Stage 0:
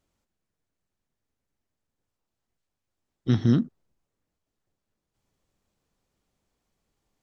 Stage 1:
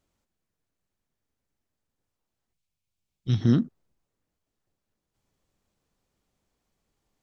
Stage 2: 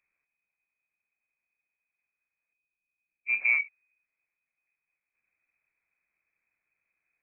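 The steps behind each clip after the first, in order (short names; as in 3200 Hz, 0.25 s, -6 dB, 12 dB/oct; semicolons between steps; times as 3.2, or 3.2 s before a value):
spectral gain 2.52–3.41, 210–2100 Hz -9 dB
inverted band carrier 2500 Hz; gain -5 dB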